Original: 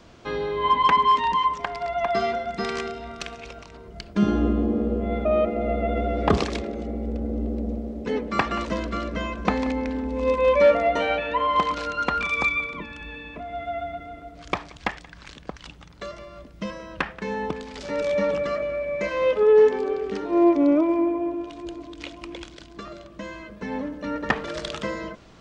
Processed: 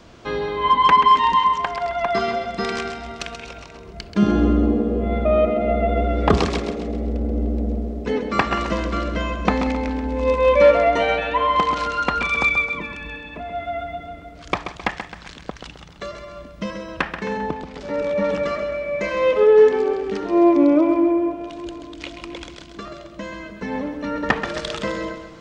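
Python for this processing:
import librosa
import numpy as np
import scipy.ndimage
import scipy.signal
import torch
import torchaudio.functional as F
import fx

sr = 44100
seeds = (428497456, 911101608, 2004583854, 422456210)

p1 = fx.high_shelf(x, sr, hz=2600.0, db=-11.0, at=(17.37, 18.25))
p2 = p1 + fx.echo_feedback(p1, sr, ms=132, feedback_pct=44, wet_db=-9.0, dry=0)
y = p2 * 10.0 ** (3.5 / 20.0)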